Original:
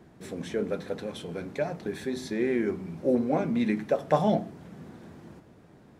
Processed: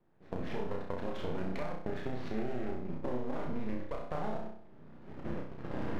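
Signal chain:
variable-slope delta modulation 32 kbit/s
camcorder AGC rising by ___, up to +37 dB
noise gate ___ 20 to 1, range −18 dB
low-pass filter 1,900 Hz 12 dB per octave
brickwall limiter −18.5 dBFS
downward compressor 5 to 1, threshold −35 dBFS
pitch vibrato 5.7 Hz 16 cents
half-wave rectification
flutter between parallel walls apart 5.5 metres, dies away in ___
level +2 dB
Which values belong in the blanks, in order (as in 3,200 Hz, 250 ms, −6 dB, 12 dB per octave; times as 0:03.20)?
16 dB per second, −33 dBFS, 0.54 s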